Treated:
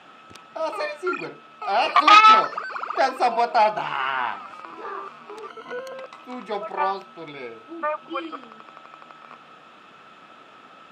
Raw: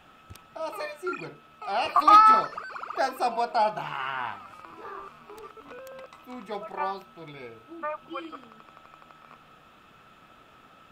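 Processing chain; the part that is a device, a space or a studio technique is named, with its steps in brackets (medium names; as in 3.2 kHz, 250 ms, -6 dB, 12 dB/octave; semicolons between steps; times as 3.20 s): public-address speaker with an overloaded transformer (transformer saturation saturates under 1.7 kHz; band-pass 220–6700 Hz); 5.48–5.94 s: rippled EQ curve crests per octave 1.9, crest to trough 15 dB; trim +7 dB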